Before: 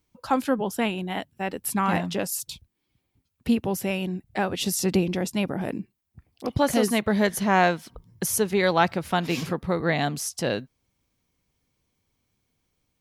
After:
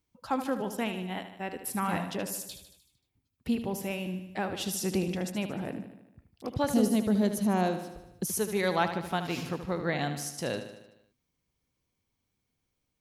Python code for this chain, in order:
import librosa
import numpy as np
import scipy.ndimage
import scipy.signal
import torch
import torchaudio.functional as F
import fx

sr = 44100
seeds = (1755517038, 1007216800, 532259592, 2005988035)

y = fx.graphic_eq(x, sr, hz=(250, 1000, 2000), db=(7, -4, -11), at=(6.69, 8.29))
y = fx.echo_feedback(y, sr, ms=76, feedback_pct=58, wet_db=-10)
y = y * 10.0 ** (-7.0 / 20.0)